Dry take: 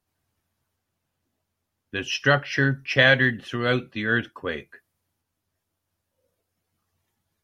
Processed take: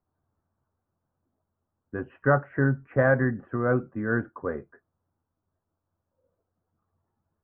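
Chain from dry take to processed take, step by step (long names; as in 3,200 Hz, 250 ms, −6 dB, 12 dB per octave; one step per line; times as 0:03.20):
Butterworth low-pass 1,400 Hz 36 dB per octave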